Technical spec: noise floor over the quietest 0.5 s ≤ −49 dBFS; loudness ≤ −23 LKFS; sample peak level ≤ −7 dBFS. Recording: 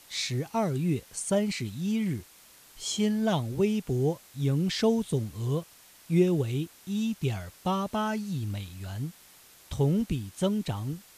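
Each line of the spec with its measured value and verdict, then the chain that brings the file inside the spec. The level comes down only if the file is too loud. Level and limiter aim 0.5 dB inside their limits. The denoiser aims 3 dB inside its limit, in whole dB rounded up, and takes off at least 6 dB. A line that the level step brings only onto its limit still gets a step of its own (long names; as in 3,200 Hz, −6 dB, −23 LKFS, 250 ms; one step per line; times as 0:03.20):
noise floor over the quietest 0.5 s −55 dBFS: in spec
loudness −29.5 LKFS: in spec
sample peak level −11.5 dBFS: in spec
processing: no processing needed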